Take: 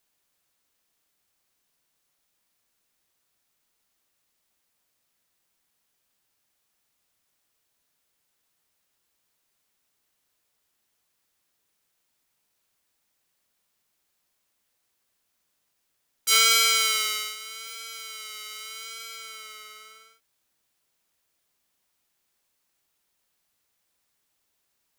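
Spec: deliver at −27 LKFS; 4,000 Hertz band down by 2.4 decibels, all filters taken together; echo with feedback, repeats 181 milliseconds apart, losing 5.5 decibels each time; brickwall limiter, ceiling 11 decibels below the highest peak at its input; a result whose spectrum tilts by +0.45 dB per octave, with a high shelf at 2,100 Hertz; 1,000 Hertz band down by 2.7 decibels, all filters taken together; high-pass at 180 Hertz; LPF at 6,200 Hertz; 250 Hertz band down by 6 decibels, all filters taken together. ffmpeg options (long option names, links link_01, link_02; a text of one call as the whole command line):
ffmpeg -i in.wav -af "highpass=180,lowpass=6200,equalizer=frequency=250:width_type=o:gain=-5,equalizer=frequency=1000:width_type=o:gain=-6,highshelf=frequency=2100:gain=5,equalizer=frequency=4000:width_type=o:gain=-7,alimiter=limit=-17dB:level=0:latency=1,aecho=1:1:181|362|543|724|905|1086|1267:0.531|0.281|0.149|0.079|0.0419|0.0222|0.0118,volume=4.5dB" out.wav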